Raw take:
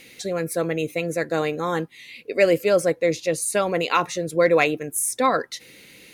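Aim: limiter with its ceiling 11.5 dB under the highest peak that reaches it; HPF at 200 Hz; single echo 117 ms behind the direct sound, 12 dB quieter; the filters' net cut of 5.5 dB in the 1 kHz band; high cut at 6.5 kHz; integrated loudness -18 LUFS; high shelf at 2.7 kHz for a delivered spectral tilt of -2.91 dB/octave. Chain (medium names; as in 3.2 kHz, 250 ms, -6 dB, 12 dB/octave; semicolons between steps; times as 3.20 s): high-pass 200 Hz; low-pass 6.5 kHz; peaking EQ 1 kHz -8.5 dB; treble shelf 2.7 kHz +6.5 dB; peak limiter -17 dBFS; delay 117 ms -12 dB; trim +9.5 dB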